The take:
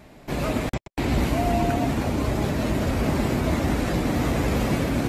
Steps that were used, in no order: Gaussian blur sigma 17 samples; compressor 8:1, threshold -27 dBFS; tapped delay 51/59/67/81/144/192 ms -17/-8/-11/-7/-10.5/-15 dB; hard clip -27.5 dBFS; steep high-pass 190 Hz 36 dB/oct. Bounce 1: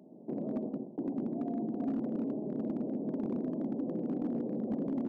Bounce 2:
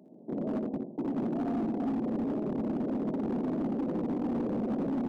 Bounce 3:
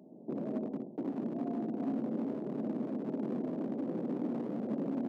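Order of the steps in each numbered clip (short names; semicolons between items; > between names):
compressor > tapped delay > Gaussian blur > steep high-pass > hard clip; Gaussian blur > steep high-pass > compressor > tapped delay > hard clip; compressor > tapped delay > Gaussian blur > hard clip > steep high-pass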